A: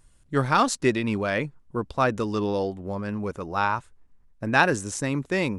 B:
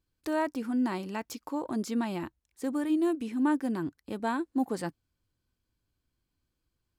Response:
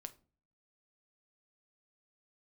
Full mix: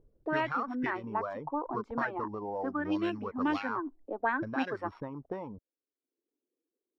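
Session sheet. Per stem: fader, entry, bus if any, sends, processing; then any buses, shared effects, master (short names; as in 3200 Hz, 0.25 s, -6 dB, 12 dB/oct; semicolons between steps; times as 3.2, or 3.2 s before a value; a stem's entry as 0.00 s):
-2.5 dB, 0.00 s, no send, sample sorter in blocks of 8 samples; limiter -13.5 dBFS, peak gain reduction 8.5 dB; compressor 16:1, threshold -31 dBFS, peak gain reduction 13 dB
-4.0 dB, 0.00 s, send -6.5 dB, steep high-pass 240 Hz 48 dB/oct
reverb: on, RT60 0.40 s, pre-delay 6 ms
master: reverb removal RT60 0.59 s; low shelf 270 Hz -4.5 dB; envelope low-pass 430–2800 Hz up, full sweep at -27.5 dBFS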